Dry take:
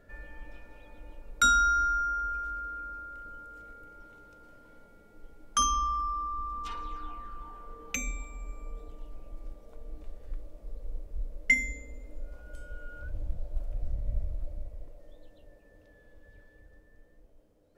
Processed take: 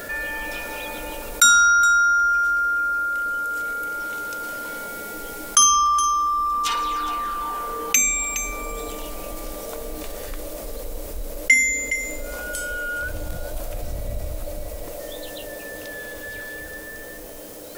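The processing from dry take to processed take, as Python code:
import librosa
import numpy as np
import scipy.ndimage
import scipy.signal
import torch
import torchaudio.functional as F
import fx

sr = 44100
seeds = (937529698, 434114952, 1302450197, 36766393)

y = fx.riaa(x, sr, side='recording')
y = y + 10.0 ** (-19.0 / 20.0) * np.pad(y, (int(416 * sr / 1000.0), 0))[:len(y)]
y = fx.env_flatten(y, sr, amount_pct=50)
y = y * librosa.db_to_amplitude(4.0)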